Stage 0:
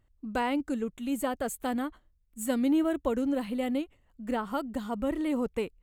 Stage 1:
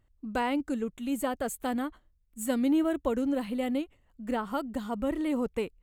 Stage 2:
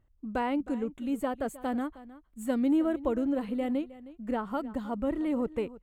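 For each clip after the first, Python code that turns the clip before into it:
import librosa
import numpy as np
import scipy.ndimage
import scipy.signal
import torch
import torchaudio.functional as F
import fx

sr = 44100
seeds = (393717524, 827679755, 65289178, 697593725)

y1 = x
y2 = fx.high_shelf(y1, sr, hz=2700.0, db=-11.0)
y2 = y2 + 10.0 ** (-17.5 / 20.0) * np.pad(y2, (int(313 * sr / 1000.0), 0))[:len(y2)]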